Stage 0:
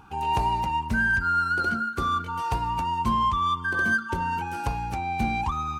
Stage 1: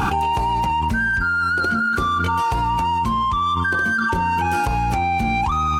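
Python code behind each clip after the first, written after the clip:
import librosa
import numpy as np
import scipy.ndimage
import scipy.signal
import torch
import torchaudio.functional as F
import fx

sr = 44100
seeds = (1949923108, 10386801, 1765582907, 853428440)

y = fx.env_flatten(x, sr, amount_pct=100)
y = y * 10.0 ** (1.0 / 20.0)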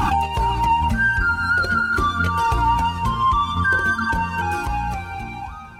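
y = fx.fade_out_tail(x, sr, length_s=1.9)
y = fx.echo_diffused(y, sr, ms=462, feedback_pct=45, wet_db=-13.0)
y = fx.comb_cascade(y, sr, direction='falling', hz=1.5)
y = y * 10.0 ** (4.5 / 20.0)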